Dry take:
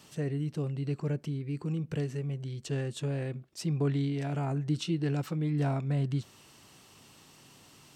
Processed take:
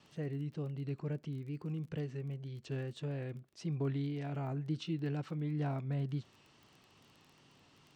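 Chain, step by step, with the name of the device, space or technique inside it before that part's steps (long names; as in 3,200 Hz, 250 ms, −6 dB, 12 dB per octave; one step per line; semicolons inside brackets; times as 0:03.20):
lo-fi chain (low-pass filter 4,400 Hz 12 dB per octave; tape wow and flutter; surface crackle 21 per second −43 dBFS)
level −6.5 dB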